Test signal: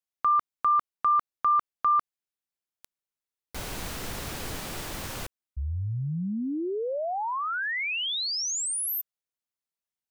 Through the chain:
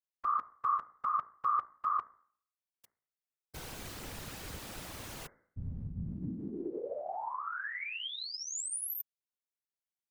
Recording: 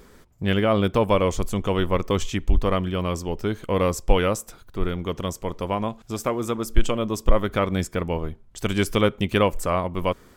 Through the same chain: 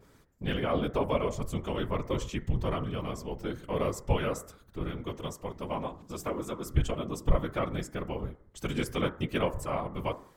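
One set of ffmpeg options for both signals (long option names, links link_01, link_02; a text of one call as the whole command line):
ffmpeg -i in.wav -af "bandreject=frequency=55.78:width_type=h:width=4,bandreject=frequency=111.56:width_type=h:width=4,bandreject=frequency=167.34:width_type=h:width=4,bandreject=frequency=223.12:width_type=h:width=4,bandreject=frequency=278.9:width_type=h:width=4,bandreject=frequency=334.68:width_type=h:width=4,bandreject=frequency=390.46:width_type=h:width=4,bandreject=frequency=446.24:width_type=h:width=4,bandreject=frequency=502.02:width_type=h:width=4,bandreject=frequency=557.8:width_type=h:width=4,bandreject=frequency=613.58:width_type=h:width=4,bandreject=frequency=669.36:width_type=h:width=4,bandreject=frequency=725.14:width_type=h:width=4,bandreject=frequency=780.92:width_type=h:width=4,bandreject=frequency=836.7:width_type=h:width=4,bandreject=frequency=892.48:width_type=h:width=4,bandreject=frequency=948.26:width_type=h:width=4,bandreject=frequency=1004.04:width_type=h:width=4,bandreject=frequency=1059.82:width_type=h:width=4,bandreject=frequency=1115.6:width_type=h:width=4,bandreject=frequency=1171.38:width_type=h:width=4,bandreject=frequency=1227.16:width_type=h:width=4,bandreject=frequency=1282.94:width_type=h:width=4,bandreject=frequency=1338.72:width_type=h:width=4,bandreject=frequency=1394.5:width_type=h:width=4,bandreject=frequency=1450.28:width_type=h:width=4,bandreject=frequency=1506.06:width_type=h:width=4,bandreject=frequency=1561.84:width_type=h:width=4,bandreject=frequency=1617.62:width_type=h:width=4,bandreject=frequency=1673.4:width_type=h:width=4,bandreject=frequency=1729.18:width_type=h:width=4,bandreject=frequency=1784.96:width_type=h:width=4,bandreject=frequency=1840.74:width_type=h:width=4,bandreject=frequency=1896.52:width_type=h:width=4,bandreject=frequency=1952.3:width_type=h:width=4,bandreject=frequency=2008.08:width_type=h:width=4,bandreject=frequency=2063.86:width_type=h:width=4,bandreject=frequency=2119.64:width_type=h:width=4,afftfilt=real='hypot(re,im)*cos(2*PI*random(0))':imag='hypot(re,im)*sin(2*PI*random(1))':win_size=512:overlap=0.75,adynamicequalizer=threshold=0.01:dfrequency=2100:dqfactor=0.7:tfrequency=2100:tqfactor=0.7:attack=5:release=100:ratio=0.4:range=2:mode=cutabove:tftype=highshelf,volume=-2.5dB" out.wav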